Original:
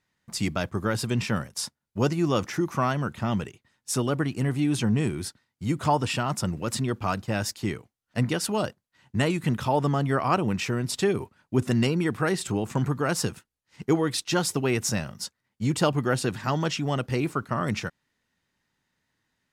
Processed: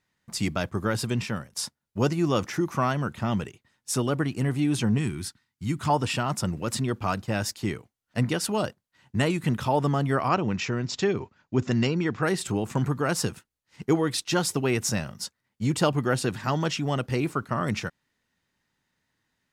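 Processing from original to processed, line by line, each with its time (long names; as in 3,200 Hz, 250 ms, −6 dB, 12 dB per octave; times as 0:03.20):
0:01.06–0:01.52: fade out, to −8.5 dB
0:04.98–0:05.90: parametric band 540 Hz −13.5 dB 0.85 octaves
0:10.29–0:12.23: Chebyshev low-pass filter 7,200 Hz, order 6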